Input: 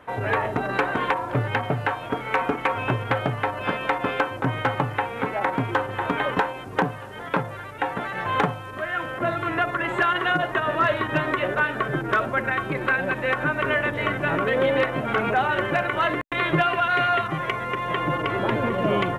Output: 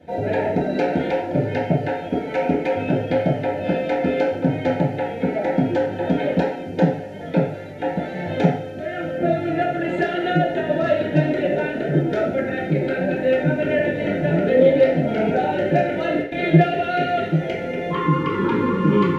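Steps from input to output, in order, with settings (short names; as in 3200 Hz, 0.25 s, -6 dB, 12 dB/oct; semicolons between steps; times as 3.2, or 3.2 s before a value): Butterworth band-stop 1100 Hz, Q 1.3, from 17.9 s 670 Hz; reverb RT60 0.55 s, pre-delay 3 ms, DRR -11 dB; gain -11.5 dB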